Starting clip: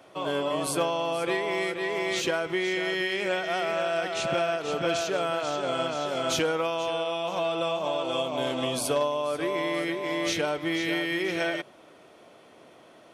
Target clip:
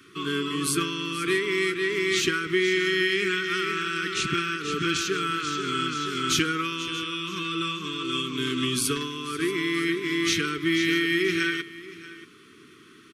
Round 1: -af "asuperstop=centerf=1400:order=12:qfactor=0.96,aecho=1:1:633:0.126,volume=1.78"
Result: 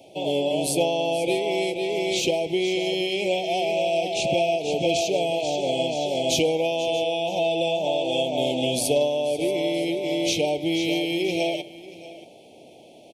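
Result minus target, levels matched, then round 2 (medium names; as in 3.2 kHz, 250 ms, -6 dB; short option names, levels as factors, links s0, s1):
500 Hz band +6.5 dB
-af "asuperstop=centerf=690:order=12:qfactor=0.96,aecho=1:1:633:0.126,volume=1.78"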